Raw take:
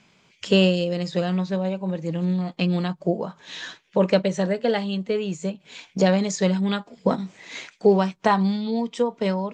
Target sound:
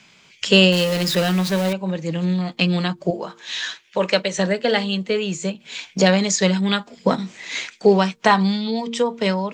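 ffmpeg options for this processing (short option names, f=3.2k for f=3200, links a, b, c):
-filter_complex "[0:a]asettb=1/sr,asplit=3[a][b][c];[a]atrim=end=0.724[d];[b]atrim=start=0.72:end=1.73,asetpts=PTS-STARTPTS,afade=t=in:d=0.004:c=qsin,afade=t=out:st=1.006:d=0.004:c=qsin,aeval=exprs='val(0)+0.5*0.0335*sgn(val(0))':c=same[e];[c]atrim=start=1.726[f];[d][e]acrossfade=d=0.004:c1=hsin:c2=qsin[g];[g][f]acrossfade=d=0.004:c1=qsin:c2=hsin,asettb=1/sr,asplit=3[h][i][j];[h]atrim=end=3.104[k];[i]atrim=start=3.1:end=4.39,asetpts=PTS-STARTPTS,afade=t=in:d=0.004:c=qsin,afade=t=out:st=1.286:d=0.004:c=qsin,lowshelf=f=340:g=-11[l];[j]atrim=start=4.386[m];[k][l]acrossfade=d=0.004:c1=hsin:c2=qsin[n];[n][m]acrossfade=d=0.004:c1=qsin:c2=hsin,acrossover=split=160|1400[o][p][q];[q]acontrast=86[r];[o][p][r]amix=inputs=3:normalize=0,bandreject=f=115.8:t=h:w=4,bandreject=f=231.6:t=h:w=4,bandreject=f=347.4:t=h:w=4,bandreject=f=463.2:t=h:w=4,volume=2.5dB"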